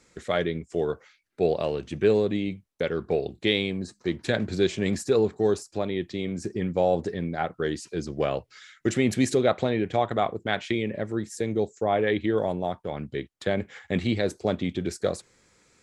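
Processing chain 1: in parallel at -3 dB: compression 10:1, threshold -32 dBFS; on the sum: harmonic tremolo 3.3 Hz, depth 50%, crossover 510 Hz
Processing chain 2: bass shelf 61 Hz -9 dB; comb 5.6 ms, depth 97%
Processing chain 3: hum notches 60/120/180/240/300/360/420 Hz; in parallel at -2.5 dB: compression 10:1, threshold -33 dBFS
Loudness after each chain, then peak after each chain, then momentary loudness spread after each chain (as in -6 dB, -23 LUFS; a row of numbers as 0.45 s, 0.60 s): -28.0 LUFS, -25.0 LUFS, -26.0 LUFS; -10.0 dBFS, -6.5 dBFS, -7.0 dBFS; 8 LU, 7 LU, 7 LU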